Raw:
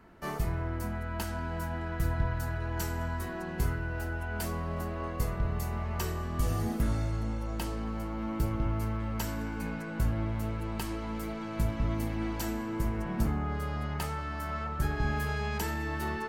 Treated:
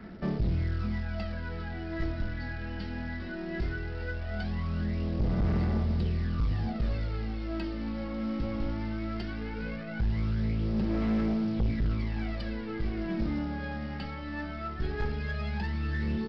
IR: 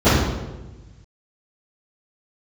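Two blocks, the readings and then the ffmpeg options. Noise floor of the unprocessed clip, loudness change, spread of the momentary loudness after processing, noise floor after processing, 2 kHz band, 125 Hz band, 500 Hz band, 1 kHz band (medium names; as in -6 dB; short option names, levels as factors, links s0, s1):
-37 dBFS, +1.0 dB, 8 LU, -37 dBFS, -1.0 dB, +1.0 dB, -0.5 dB, -5.5 dB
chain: -filter_complex "[0:a]acrossover=split=440[s0][s1];[s1]acompressor=threshold=0.01:ratio=2.5[s2];[s0][s2]amix=inputs=2:normalize=0,aphaser=in_gain=1:out_gain=1:delay=3.7:decay=0.71:speed=0.18:type=sinusoidal,equalizer=f=200:t=o:w=0.33:g=11,equalizer=f=1000:t=o:w=0.33:g=-11,equalizer=f=2000:t=o:w=0.33:g=4,aresample=11025,acrusher=bits=5:mode=log:mix=0:aa=0.000001,aresample=44100,asoftclip=type=tanh:threshold=0.0841,volume=0.841"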